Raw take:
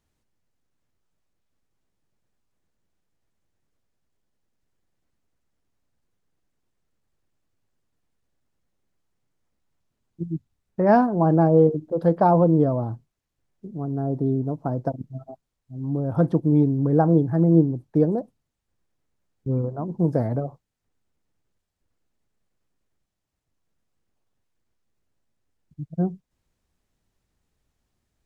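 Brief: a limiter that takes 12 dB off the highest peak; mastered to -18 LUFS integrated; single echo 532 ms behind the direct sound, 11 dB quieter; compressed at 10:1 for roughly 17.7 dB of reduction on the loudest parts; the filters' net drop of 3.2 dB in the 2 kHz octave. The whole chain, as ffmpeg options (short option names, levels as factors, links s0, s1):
-af "equalizer=f=2000:t=o:g=-4.5,acompressor=threshold=0.0316:ratio=10,alimiter=level_in=2.37:limit=0.0631:level=0:latency=1,volume=0.422,aecho=1:1:532:0.282,volume=15"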